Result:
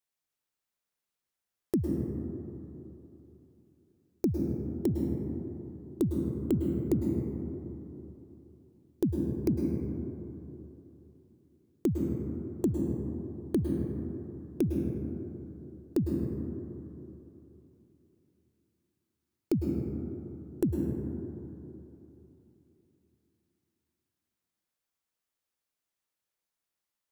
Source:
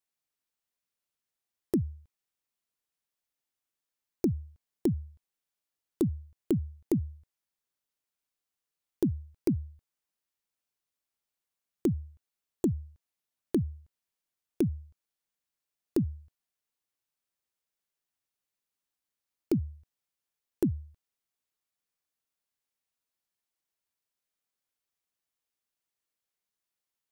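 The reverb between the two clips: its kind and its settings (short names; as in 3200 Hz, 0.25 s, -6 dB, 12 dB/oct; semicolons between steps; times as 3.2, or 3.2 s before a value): plate-style reverb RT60 3.3 s, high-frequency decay 0.25×, pre-delay 95 ms, DRR 1 dB; gain -1 dB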